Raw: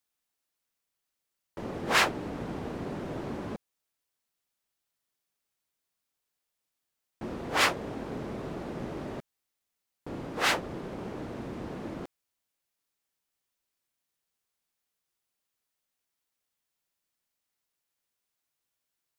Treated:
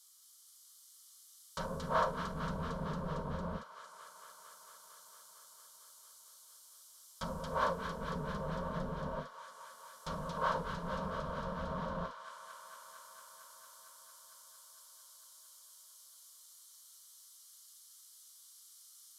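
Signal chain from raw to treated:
treble cut that deepens with the level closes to 670 Hz, closed at −32.5 dBFS
guitar amp tone stack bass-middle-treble 10-0-10
in parallel at −0.5 dB: speech leveller 0.5 s
on the sum: high-shelf EQ 2,200 Hz +12 dB
phaser with its sweep stopped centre 540 Hz, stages 8
formants moved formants −4 semitones
delay with a high-pass on its return 227 ms, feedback 82%, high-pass 1,500 Hz, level −4 dB
on a send at −3 dB: convolution reverb, pre-delay 3 ms
on the sum: highs frequency-modulated by the lows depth 0.14 ms
level +7 dB

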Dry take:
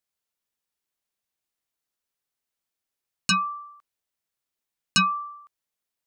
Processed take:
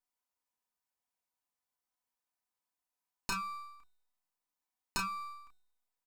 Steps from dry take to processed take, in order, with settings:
lower of the sound and its delayed copy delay 4 ms
parametric band 3,400 Hz −3.5 dB 0.73 octaves
tuned comb filter 370 Hz, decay 0.89 s, mix 50%
downward compressor 3 to 1, threshold −37 dBFS, peak gain reduction 9.5 dB
parametric band 930 Hz +10.5 dB 0.54 octaves
mains-hum notches 50/100/150/200 Hz
double-tracking delay 31 ms −5.5 dB

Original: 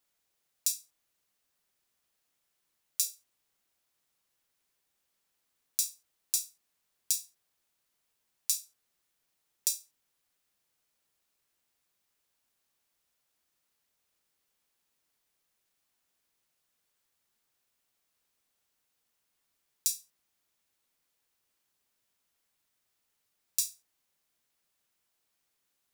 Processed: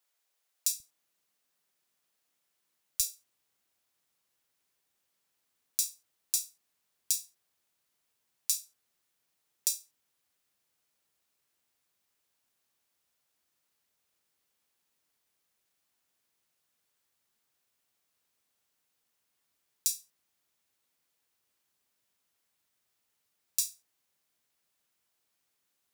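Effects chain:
high-pass filter 470 Hz 12 dB per octave, from 0:00.80 120 Hz, from 0:03.00 56 Hz

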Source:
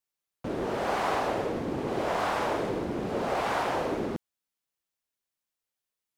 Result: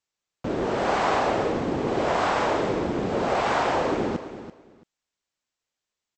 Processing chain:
linear-phase brick-wall low-pass 8,200 Hz
repeating echo 335 ms, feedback 19%, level −12.5 dB
level +5 dB

